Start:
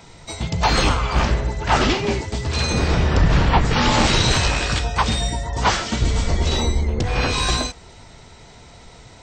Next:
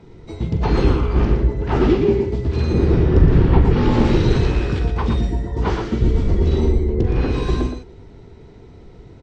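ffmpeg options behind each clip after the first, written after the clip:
ffmpeg -i in.wav -filter_complex "[0:a]firequalizer=gain_entry='entry(230,0);entry(380,6);entry(600,-10);entry(8400,-27)':delay=0.05:min_phase=1,asplit=2[link_01][link_02];[link_02]aecho=0:1:43.73|116.6:0.251|0.501[link_03];[link_01][link_03]amix=inputs=2:normalize=0,volume=2.5dB" out.wav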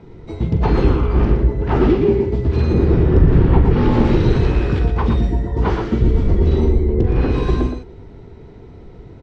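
ffmpeg -i in.wav -filter_complex "[0:a]highshelf=frequency=4100:gain=-10.5,asplit=2[link_01][link_02];[link_02]alimiter=limit=-10.5dB:level=0:latency=1:release=317,volume=-1.5dB[link_03];[link_01][link_03]amix=inputs=2:normalize=0,volume=-2dB" out.wav

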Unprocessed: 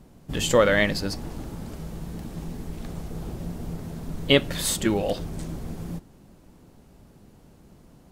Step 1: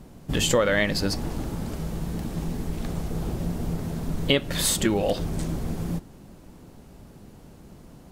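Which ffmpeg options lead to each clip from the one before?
ffmpeg -i in.wav -af "acompressor=threshold=-25dB:ratio=3,volume=5dB" out.wav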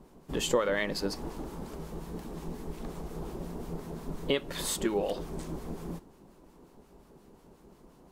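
ffmpeg -i in.wav -filter_complex "[0:a]equalizer=frequency=100:width_type=o:width=0.67:gain=-11,equalizer=frequency=400:width_type=o:width=0.67:gain=7,equalizer=frequency=1000:width_type=o:width=0.67:gain=7,acrossover=split=1100[link_01][link_02];[link_01]aeval=exprs='val(0)*(1-0.5/2+0.5/2*cos(2*PI*5.6*n/s))':channel_layout=same[link_03];[link_02]aeval=exprs='val(0)*(1-0.5/2-0.5/2*cos(2*PI*5.6*n/s))':channel_layout=same[link_04];[link_03][link_04]amix=inputs=2:normalize=0,volume=-7.5dB" out.wav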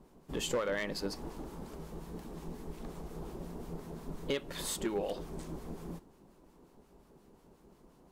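ffmpeg -i in.wav -af "volume=22dB,asoftclip=hard,volume=-22dB,volume=-4.5dB" out.wav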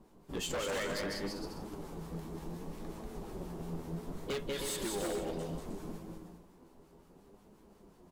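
ffmpeg -i in.wav -af "aecho=1:1:190|313.5|393.8|446|479.9:0.631|0.398|0.251|0.158|0.1,flanger=delay=9.2:depth=3.1:regen=51:speed=0.66:shape=sinusoidal,aeval=exprs='0.0224*(abs(mod(val(0)/0.0224+3,4)-2)-1)':channel_layout=same,volume=3dB" out.wav

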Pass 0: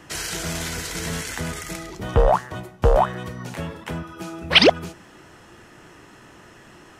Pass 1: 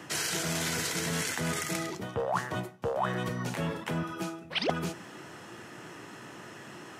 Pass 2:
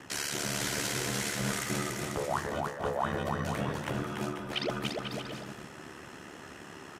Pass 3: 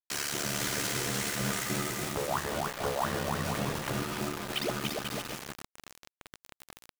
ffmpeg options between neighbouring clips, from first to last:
ffmpeg -i in.wav -af "highpass=frequency=110:width=0.5412,highpass=frequency=110:width=1.3066,areverse,acompressor=threshold=-29dB:ratio=12,areverse,volume=1.5dB" out.wav
ffmpeg -i in.wav -af "aeval=exprs='val(0)*sin(2*PI*36*n/s)':channel_layout=same,aecho=1:1:290|493|635.1|734.6|804.2:0.631|0.398|0.251|0.158|0.1" out.wav
ffmpeg -i in.wav -af "aeval=exprs='val(0)+0.00316*sin(2*PI*1200*n/s)':channel_layout=same,acrusher=bits=5:mix=0:aa=0.000001" out.wav

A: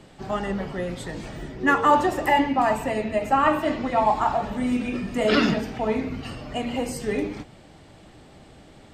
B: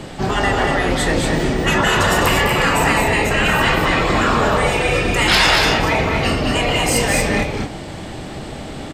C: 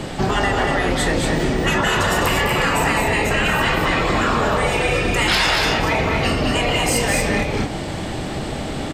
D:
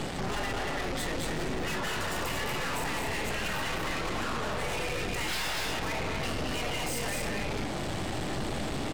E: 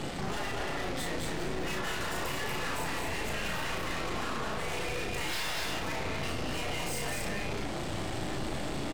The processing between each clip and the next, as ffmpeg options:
ffmpeg -i in.wav -af "afftfilt=real='re*lt(hypot(re,im),0.158)':imag='im*lt(hypot(re,im),0.158)':win_size=1024:overlap=0.75,aeval=exprs='0.15*sin(PI/2*1.78*val(0)/0.15)':channel_layout=same,aecho=1:1:29.15|204.1|236.2:0.251|0.447|0.562,volume=8dB" out.wav
ffmpeg -i in.wav -af "acompressor=threshold=-21dB:ratio=3,volume=4dB" out.wav
ffmpeg -i in.wav -af "alimiter=limit=-14dB:level=0:latency=1:release=108,aeval=exprs='(tanh(35.5*val(0)+0.7)-tanh(0.7))/35.5':channel_layout=same" out.wav
ffmpeg -i in.wav -filter_complex "[0:a]asplit=2[link_01][link_02];[link_02]adelay=35,volume=-4dB[link_03];[link_01][link_03]amix=inputs=2:normalize=0,volume=-3.5dB" out.wav

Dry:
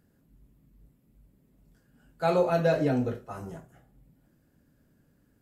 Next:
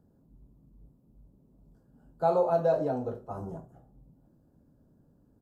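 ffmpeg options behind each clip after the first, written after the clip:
ffmpeg -i in.wav -filter_complex "[0:a]firequalizer=gain_entry='entry(910,0);entry(2000,-23);entry(4000,-14)':delay=0.05:min_phase=1,acrossover=split=510[link_01][link_02];[link_01]acompressor=threshold=-37dB:ratio=6[link_03];[link_03][link_02]amix=inputs=2:normalize=0,volume=2.5dB" out.wav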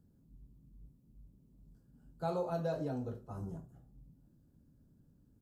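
ffmpeg -i in.wav -af "equalizer=frequency=690:width=0.59:gain=-12.5" out.wav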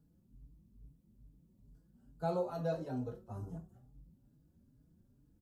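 ffmpeg -i in.wav -filter_complex "[0:a]asplit=2[link_01][link_02];[link_02]adelay=4.4,afreqshift=2.3[link_03];[link_01][link_03]amix=inputs=2:normalize=1,volume=1.5dB" out.wav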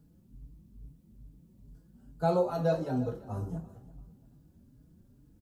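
ffmpeg -i in.wav -af "aecho=1:1:339|678|1017:0.119|0.0368|0.0114,volume=8dB" out.wav

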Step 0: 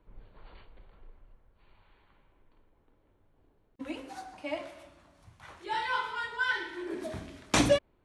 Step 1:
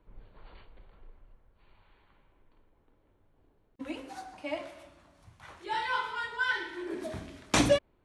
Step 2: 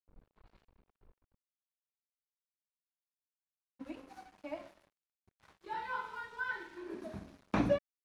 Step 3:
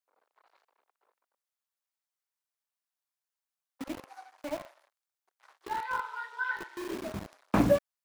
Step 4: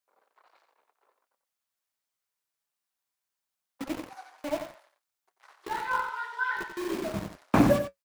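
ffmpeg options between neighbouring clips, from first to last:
ffmpeg -i in.wav -af anull out.wav
ffmpeg -i in.wav -filter_complex "[0:a]equalizer=frequency=200:width_type=o:width=0.33:gain=9,equalizer=frequency=2000:width_type=o:width=0.33:gain=-5,equalizer=frequency=3150:width_type=o:width=0.33:gain=-8,equalizer=frequency=8000:width_type=o:width=0.33:gain=-8,aeval=exprs='sgn(val(0))*max(abs(val(0))-0.00316,0)':channel_layout=same,acrossover=split=2900[link_01][link_02];[link_02]acompressor=threshold=-57dB:ratio=4:attack=1:release=60[link_03];[link_01][link_03]amix=inputs=2:normalize=0,volume=-6dB" out.wav
ffmpeg -i in.wav -filter_complex "[0:a]acrossover=split=560|2400[link_01][link_02][link_03];[link_01]acrusher=bits=7:mix=0:aa=0.000001[link_04];[link_03]aeval=exprs='val(0)*sin(2*PI*130*n/s)':channel_layout=same[link_05];[link_04][link_02][link_05]amix=inputs=3:normalize=0,volume=6.5dB" out.wav
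ffmpeg -i in.wav -af "flanger=delay=5:depth=3.2:regen=-58:speed=0.31:shape=sinusoidal,aecho=1:1:90:0.376,volume=8dB" out.wav

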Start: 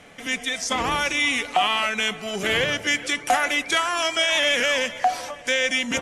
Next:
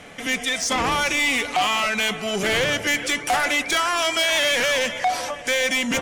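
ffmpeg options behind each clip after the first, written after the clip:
ffmpeg -i in.wav -af "asoftclip=type=tanh:threshold=-22dB,volume=5.5dB" out.wav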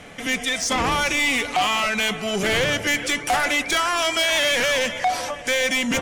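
ffmpeg -i in.wav -af "lowshelf=frequency=160:gain=4.5" out.wav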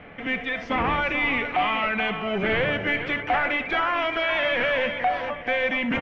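ffmpeg -i in.wav -filter_complex "[0:a]lowpass=frequency=2600:width=0.5412,lowpass=frequency=2600:width=1.3066,asplit=2[link_01][link_02];[link_02]aecho=0:1:64|434:0.224|0.316[link_03];[link_01][link_03]amix=inputs=2:normalize=0,volume=-2dB" out.wav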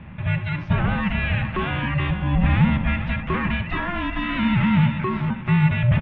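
ffmpeg -i in.wav -af "highpass=130,lowpass=3500,aeval=exprs='val(0)*sin(2*PI*360*n/s)':channel_layout=same,lowshelf=frequency=280:width_type=q:width=1.5:gain=13.5" out.wav

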